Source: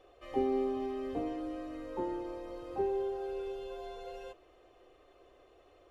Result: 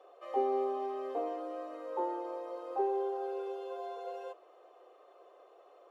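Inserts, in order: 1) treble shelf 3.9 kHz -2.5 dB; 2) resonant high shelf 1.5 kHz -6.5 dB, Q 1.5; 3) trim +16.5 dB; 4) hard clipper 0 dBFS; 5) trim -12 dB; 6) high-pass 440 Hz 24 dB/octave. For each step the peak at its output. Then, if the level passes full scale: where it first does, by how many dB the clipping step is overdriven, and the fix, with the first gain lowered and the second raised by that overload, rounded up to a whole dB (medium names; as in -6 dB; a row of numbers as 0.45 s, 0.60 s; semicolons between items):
-19.5 dBFS, -19.0 dBFS, -2.5 dBFS, -2.5 dBFS, -14.5 dBFS, -19.5 dBFS; nothing clips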